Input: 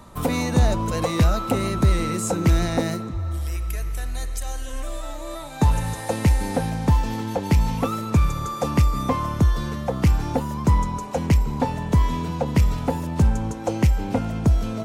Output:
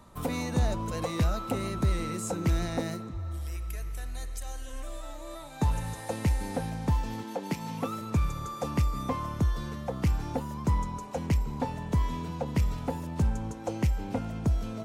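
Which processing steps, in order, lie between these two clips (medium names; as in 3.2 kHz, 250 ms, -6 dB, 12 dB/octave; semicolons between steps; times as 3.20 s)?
7.22–8.00 s: high-pass 230 Hz -> 96 Hz 24 dB/octave; trim -8.5 dB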